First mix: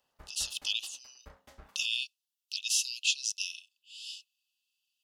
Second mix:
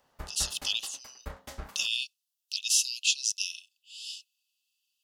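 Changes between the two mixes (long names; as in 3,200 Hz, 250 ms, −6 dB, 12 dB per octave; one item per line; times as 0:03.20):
background +11.0 dB
master: add bass and treble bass +2 dB, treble +5 dB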